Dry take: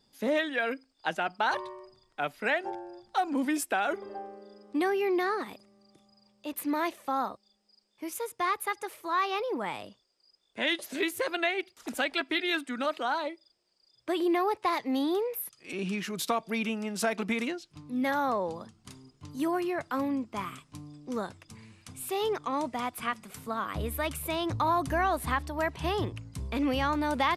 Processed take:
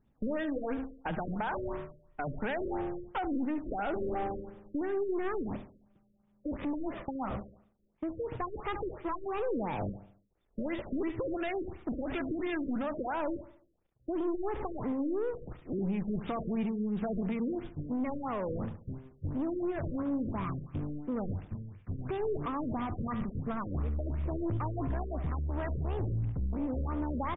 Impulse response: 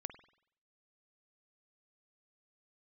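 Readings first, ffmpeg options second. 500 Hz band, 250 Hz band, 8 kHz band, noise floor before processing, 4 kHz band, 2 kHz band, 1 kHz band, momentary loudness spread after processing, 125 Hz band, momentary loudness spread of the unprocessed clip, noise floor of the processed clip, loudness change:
−3.5 dB, −1.0 dB, below −35 dB, −71 dBFS, −18.0 dB, −12.0 dB, −8.0 dB, 7 LU, +5.5 dB, 14 LU, −69 dBFS, −4.5 dB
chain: -filter_complex "[0:a]aeval=exprs='val(0)+0.5*0.0224*sgn(val(0))':channel_layout=same,agate=range=-39dB:threshold=-36dB:ratio=16:detection=peak,aemphasis=mode=reproduction:type=riaa,acompressor=threshold=-30dB:ratio=6,aeval=exprs='(tanh(39.8*val(0)+0.3)-tanh(0.3))/39.8':channel_layout=same,asplit=2[link_01][link_02];[link_02]aecho=0:1:71|142|213|284|355:0.251|0.113|0.0509|0.0229|0.0103[link_03];[link_01][link_03]amix=inputs=2:normalize=0,afftfilt=real='re*lt(b*sr/1024,570*pow(3800/570,0.5+0.5*sin(2*PI*2.9*pts/sr)))':imag='im*lt(b*sr/1024,570*pow(3800/570,0.5+0.5*sin(2*PI*2.9*pts/sr)))':win_size=1024:overlap=0.75,volume=3dB"

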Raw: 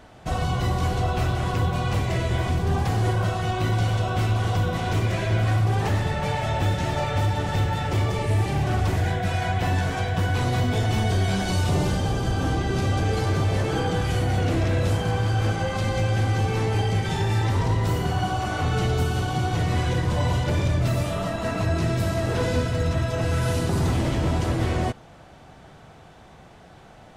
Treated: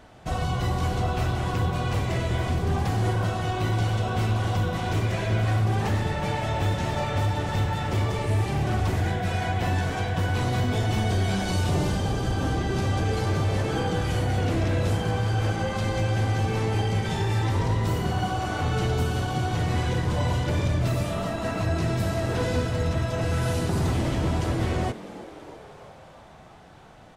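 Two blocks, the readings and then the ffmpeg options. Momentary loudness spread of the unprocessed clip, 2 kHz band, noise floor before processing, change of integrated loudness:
2 LU, −2.0 dB, −48 dBFS, −2.0 dB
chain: -filter_complex "[0:a]asplit=8[link_01][link_02][link_03][link_04][link_05][link_06][link_07][link_08];[link_02]adelay=327,afreqshift=110,volume=-17dB[link_09];[link_03]adelay=654,afreqshift=220,volume=-20.7dB[link_10];[link_04]adelay=981,afreqshift=330,volume=-24.5dB[link_11];[link_05]adelay=1308,afreqshift=440,volume=-28.2dB[link_12];[link_06]adelay=1635,afreqshift=550,volume=-32dB[link_13];[link_07]adelay=1962,afreqshift=660,volume=-35.7dB[link_14];[link_08]adelay=2289,afreqshift=770,volume=-39.5dB[link_15];[link_01][link_09][link_10][link_11][link_12][link_13][link_14][link_15]amix=inputs=8:normalize=0,volume=-2dB"

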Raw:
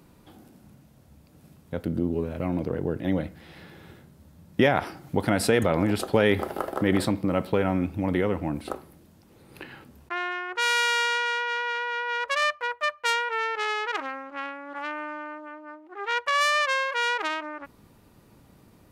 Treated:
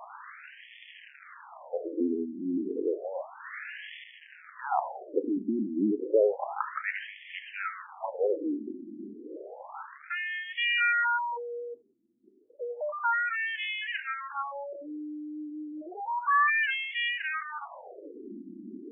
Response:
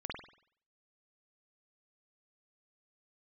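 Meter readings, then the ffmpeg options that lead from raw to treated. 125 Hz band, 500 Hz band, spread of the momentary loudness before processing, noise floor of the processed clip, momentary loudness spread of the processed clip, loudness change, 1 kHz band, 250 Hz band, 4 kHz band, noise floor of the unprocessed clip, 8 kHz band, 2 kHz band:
below −20 dB, −4.5 dB, 15 LU, −54 dBFS, 21 LU, −4.5 dB, −3.5 dB, −5.5 dB, −7.0 dB, −56 dBFS, below −40 dB, −3.0 dB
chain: -af "aeval=exprs='val(0)+0.5*0.0335*sgn(val(0))':channel_layout=same,lowshelf=frequency=110:gain=-11.5,afftfilt=real='re*between(b*sr/1024,260*pow(2500/260,0.5+0.5*sin(2*PI*0.31*pts/sr))/1.41,260*pow(2500/260,0.5+0.5*sin(2*PI*0.31*pts/sr))*1.41)':imag='im*between(b*sr/1024,260*pow(2500/260,0.5+0.5*sin(2*PI*0.31*pts/sr))/1.41,260*pow(2500/260,0.5+0.5*sin(2*PI*0.31*pts/sr))*1.41)':win_size=1024:overlap=0.75"

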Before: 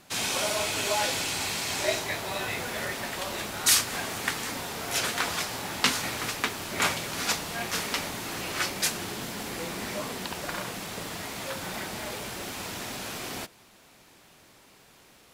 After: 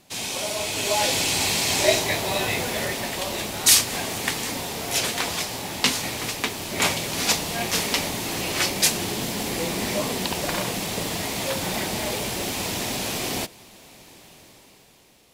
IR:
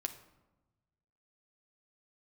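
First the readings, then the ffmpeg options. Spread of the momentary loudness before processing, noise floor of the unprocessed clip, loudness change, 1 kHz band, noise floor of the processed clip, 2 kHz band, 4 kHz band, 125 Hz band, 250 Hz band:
9 LU, −57 dBFS, +6.0 dB, +4.0 dB, −52 dBFS, +3.5 dB, +6.0 dB, +7.5 dB, +7.5 dB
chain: -af "equalizer=frequency=1400:width_type=o:width=0.75:gain=-8.5,dynaudnorm=framelen=150:gausssize=13:maxgain=9.5dB"

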